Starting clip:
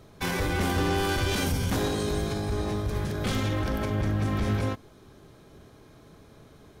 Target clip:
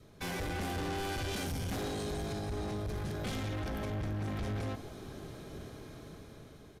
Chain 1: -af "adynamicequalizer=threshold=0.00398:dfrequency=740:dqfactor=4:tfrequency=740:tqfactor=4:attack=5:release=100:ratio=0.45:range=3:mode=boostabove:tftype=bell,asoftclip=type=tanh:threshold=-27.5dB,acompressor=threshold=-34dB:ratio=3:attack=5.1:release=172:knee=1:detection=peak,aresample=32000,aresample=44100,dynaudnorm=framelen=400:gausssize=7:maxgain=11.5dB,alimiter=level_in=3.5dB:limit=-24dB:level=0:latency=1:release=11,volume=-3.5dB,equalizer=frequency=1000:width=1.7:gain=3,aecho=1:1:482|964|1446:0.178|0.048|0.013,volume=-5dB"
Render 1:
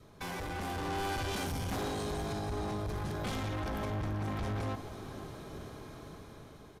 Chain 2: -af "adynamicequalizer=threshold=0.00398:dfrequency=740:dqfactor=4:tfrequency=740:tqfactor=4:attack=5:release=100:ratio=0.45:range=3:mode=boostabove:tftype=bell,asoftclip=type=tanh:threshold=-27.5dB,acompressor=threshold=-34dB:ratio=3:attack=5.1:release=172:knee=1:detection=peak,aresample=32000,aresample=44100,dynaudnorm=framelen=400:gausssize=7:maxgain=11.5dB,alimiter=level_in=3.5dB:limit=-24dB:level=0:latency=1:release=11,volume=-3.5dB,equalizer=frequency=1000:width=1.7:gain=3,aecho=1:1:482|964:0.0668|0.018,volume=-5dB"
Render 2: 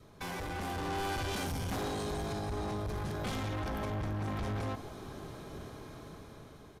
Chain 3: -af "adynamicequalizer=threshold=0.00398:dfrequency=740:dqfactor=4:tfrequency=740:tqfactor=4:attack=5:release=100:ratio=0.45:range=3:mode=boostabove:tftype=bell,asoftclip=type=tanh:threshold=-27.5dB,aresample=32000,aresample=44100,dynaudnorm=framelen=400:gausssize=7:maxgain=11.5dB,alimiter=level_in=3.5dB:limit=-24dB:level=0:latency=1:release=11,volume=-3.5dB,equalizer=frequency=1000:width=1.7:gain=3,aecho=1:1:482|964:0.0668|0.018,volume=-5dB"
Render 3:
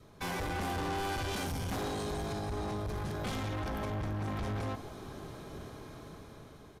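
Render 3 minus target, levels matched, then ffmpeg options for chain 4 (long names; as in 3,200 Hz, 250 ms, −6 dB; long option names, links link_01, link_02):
1,000 Hz band +3.5 dB
-af "adynamicequalizer=threshold=0.00398:dfrequency=740:dqfactor=4:tfrequency=740:tqfactor=4:attack=5:release=100:ratio=0.45:range=3:mode=boostabove:tftype=bell,asoftclip=type=tanh:threshold=-27.5dB,aresample=32000,aresample=44100,dynaudnorm=framelen=400:gausssize=7:maxgain=11.5dB,alimiter=level_in=3.5dB:limit=-24dB:level=0:latency=1:release=11,volume=-3.5dB,equalizer=frequency=1000:width=1.7:gain=-3.5,aecho=1:1:482|964:0.0668|0.018,volume=-5dB"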